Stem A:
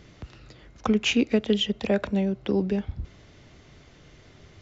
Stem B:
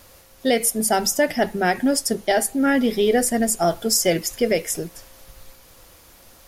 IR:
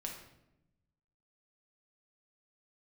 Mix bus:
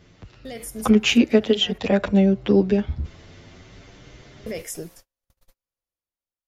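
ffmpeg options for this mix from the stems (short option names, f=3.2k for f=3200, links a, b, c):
-filter_complex "[0:a]asplit=2[a][b];[b]adelay=8.7,afreqshift=0.58[c];[a][c]amix=inputs=2:normalize=1,volume=1dB,asplit=2[d][e];[1:a]agate=range=-40dB:threshold=-38dB:ratio=16:detection=peak,alimiter=limit=-16.5dB:level=0:latency=1:release=41,volume=-13.5dB,asplit=3[f][g][h];[f]atrim=end=1.78,asetpts=PTS-STARTPTS,afade=t=out:st=1.776:d=0.004:c=hsin[i];[g]atrim=start=1.78:end=4.46,asetpts=PTS-STARTPTS,volume=0[j];[h]atrim=start=4.46,asetpts=PTS-STARTPTS,afade=t=in:d=0.004:c=hsin[k];[i][j][k]concat=n=3:v=0:a=1[l];[e]apad=whole_len=285411[m];[l][m]sidechaincompress=threshold=-39dB:ratio=3:attack=16:release=443[n];[d][n]amix=inputs=2:normalize=0,dynaudnorm=f=190:g=7:m=8dB"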